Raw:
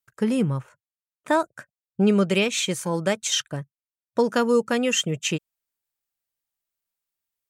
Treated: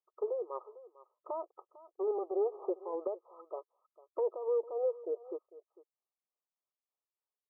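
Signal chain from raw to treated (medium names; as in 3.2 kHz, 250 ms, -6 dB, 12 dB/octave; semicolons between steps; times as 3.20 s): 1.47–2.70 s: comb filter that takes the minimum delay 2.4 ms; brick-wall FIR band-pass 340–1300 Hz; peak limiter -22 dBFS, peak gain reduction 11.5 dB; tremolo 3.3 Hz, depth 60%; delay 450 ms -19 dB; low-pass that closes with the level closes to 690 Hz, closed at -31 dBFS; trim -1 dB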